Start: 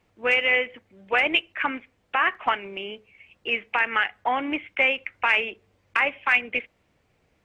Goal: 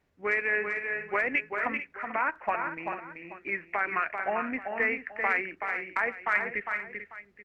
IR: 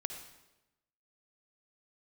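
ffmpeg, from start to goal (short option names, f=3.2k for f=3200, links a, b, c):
-filter_complex "[0:a]asplit=2[a][b];[b]aecho=0:1:386:0.531[c];[a][c]amix=inputs=2:normalize=0,asetrate=37084,aresample=44100,atempo=1.18921,asplit=2[d][e];[e]aecho=0:1:442:0.251[f];[d][f]amix=inputs=2:normalize=0,volume=-6.5dB"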